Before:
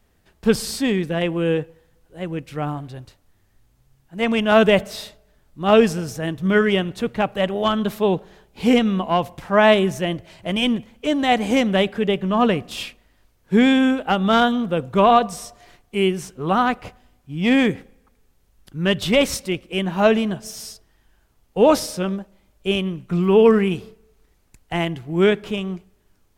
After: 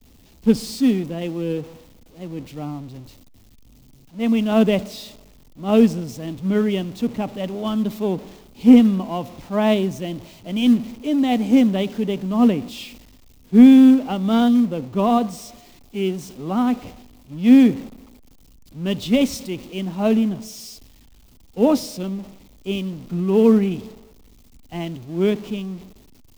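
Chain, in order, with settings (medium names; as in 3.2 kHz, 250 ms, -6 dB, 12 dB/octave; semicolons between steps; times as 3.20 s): jump at every zero crossing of -27 dBFS; expander -30 dBFS; fifteen-band graphic EQ 250 Hz +12 dB, 1.6 kHz -9 dB, 10 kHz -6 dB; in parallel at -9 dB: short-mantissa float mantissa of 2-bit; on the sum: three bands expanded up and down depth 40%; trim -10 dB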